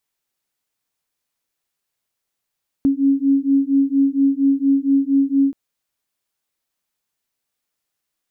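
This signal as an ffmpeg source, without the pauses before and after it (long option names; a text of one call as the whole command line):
ffmpeg -f lavfi -i "aevalsrc='0.15*(sin(2*PI*273*t)+sin(2*PI*277.3*t))':duration=2.68:sample_rate=44100" out.wav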